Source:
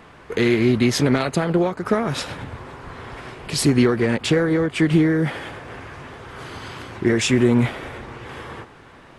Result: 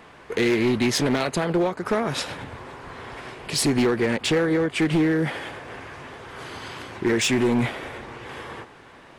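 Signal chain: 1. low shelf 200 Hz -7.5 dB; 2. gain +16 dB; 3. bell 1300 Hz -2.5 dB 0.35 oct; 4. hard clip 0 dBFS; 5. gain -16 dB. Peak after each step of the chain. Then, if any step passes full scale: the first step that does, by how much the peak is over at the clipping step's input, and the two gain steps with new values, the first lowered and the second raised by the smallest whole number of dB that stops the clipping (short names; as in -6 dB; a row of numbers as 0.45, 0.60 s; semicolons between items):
-8.0, +8.0, +8.0, 0.0, -16.0 dBFS; step 2, 8.0 dB; step 2 +8 dB, step 5 -8 dB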